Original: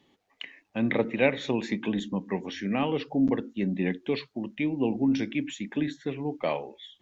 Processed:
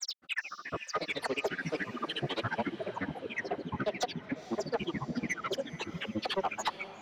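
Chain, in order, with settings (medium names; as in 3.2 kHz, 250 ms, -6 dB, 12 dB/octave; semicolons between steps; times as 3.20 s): delay that grows with frequency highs early, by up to 308 ms; compression 6:1, threshold -34 dBFS, peak gain reduction 14.5 dB; granulator 62 ms, grains 14 per s, spray 275 ms, pitch spread up and down by 12 st; overdrive pedal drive 18 dB, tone 3.4 kHz, clips at -25.5 dBFS; echo that smears into a reverb 471 ms, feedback 59%, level -15 dB; trim +4.5 dB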